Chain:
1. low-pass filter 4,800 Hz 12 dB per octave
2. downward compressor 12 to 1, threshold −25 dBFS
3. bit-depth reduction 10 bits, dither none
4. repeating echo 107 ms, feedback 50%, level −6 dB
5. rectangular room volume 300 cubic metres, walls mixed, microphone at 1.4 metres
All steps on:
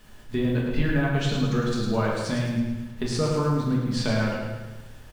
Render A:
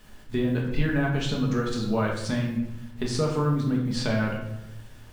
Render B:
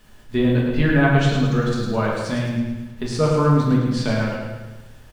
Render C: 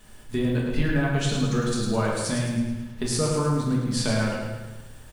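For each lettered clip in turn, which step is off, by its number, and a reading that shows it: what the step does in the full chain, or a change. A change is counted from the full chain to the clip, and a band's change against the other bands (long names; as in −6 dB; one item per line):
4, echo-to-direct ratio 4.0 dB to 2.0 dB
2, average gain reduction 3.0 dB
1, 8 kHz band +8.5 dB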